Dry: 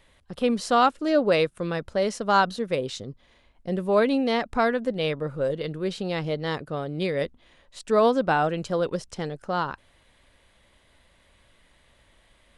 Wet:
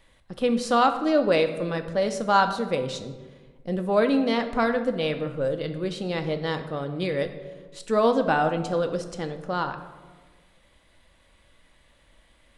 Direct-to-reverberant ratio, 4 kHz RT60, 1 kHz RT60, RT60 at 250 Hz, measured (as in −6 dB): 6.5 dB, 0.75 s, 1.3 s, 1.7 s